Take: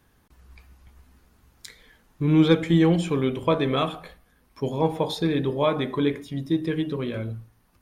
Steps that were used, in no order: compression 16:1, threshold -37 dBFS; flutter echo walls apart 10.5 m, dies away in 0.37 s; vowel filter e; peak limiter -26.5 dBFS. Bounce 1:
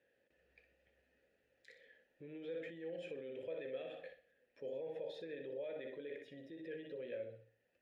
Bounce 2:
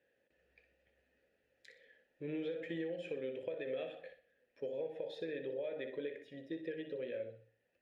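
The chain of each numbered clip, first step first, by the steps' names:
flutter echo > peak limiter > vowel filter > compression; vowel filter > peak limiter > compression > flutter echo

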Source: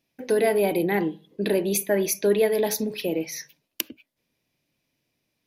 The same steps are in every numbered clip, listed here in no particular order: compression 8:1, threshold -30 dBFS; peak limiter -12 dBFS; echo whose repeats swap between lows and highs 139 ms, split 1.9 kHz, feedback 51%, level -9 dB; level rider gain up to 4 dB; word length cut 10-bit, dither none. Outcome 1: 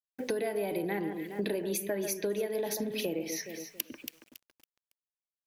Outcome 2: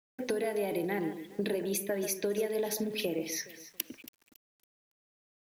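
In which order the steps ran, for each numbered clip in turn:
level rider > echo whose repeats swap between lows and highs > word length cut > compression > peak limiter; level rider > compression > peak limiter > echo whose repeats swap between lows and highs > word length cut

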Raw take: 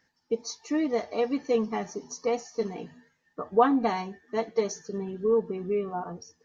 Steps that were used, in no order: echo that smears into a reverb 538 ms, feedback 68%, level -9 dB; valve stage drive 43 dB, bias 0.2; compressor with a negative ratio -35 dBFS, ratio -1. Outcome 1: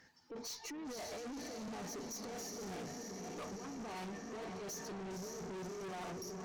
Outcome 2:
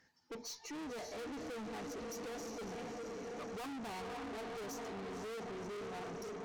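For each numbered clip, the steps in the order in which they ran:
compressor with a negative ratio > echo that smears into a reverb > valve stage; echo that smears into a reverb > valve stage > compressor with a negative ratio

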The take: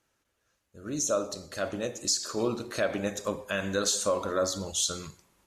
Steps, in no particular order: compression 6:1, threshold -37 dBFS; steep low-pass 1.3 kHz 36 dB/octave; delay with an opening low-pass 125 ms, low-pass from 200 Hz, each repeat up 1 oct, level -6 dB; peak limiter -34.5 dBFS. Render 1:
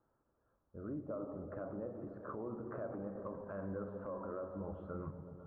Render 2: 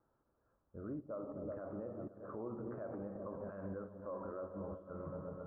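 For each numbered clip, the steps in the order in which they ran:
steep low-pass > compression > peak limiter > delay with an opening low-pass; delay with an opening low-pass > compression > peak limiter > steep low-pass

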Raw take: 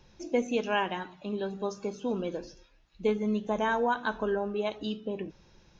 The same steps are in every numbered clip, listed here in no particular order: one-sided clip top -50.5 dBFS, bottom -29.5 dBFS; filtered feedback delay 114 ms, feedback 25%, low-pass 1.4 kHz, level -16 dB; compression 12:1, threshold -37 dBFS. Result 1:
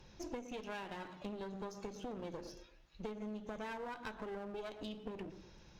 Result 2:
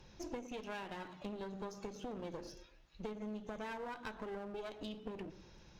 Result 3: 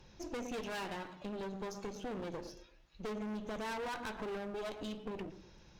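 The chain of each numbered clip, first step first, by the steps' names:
filtered feedback delay > compression > one-sided clip; compression > filtered feedback delay > one-sided clip; filtered feedback delay > one-sided clip > compression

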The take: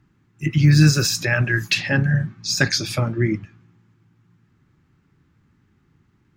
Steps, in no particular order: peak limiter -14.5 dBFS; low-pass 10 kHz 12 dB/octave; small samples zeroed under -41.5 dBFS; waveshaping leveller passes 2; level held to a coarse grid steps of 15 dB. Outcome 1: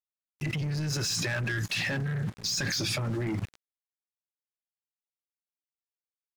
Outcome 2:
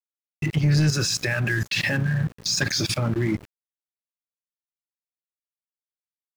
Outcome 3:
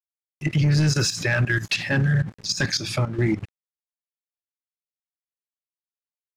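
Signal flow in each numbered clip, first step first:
peak limiter > small samples zeroed > low-pass > waveshaping leveller > level held to a coarse grid; low-pass > level held to a coarse grid > waveshaping leveller > peak limiter > small samples zeroed; waveshaping leveller > small samples zeroed > low-pass > level held to a coarse grid > peak limiter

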